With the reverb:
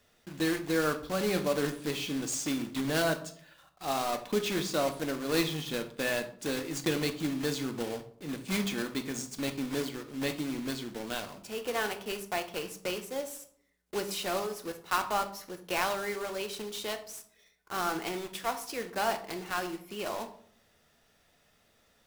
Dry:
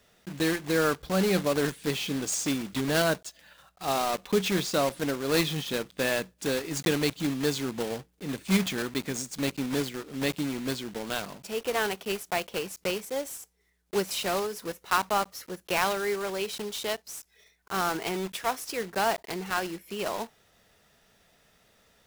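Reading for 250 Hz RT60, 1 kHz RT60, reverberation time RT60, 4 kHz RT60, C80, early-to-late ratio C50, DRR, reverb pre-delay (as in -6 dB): 0.75 s, 0.50 s, 0.60 s, 0.35 s, 16.0 dB, 12.5 dB, 6.5 dB, 3 ms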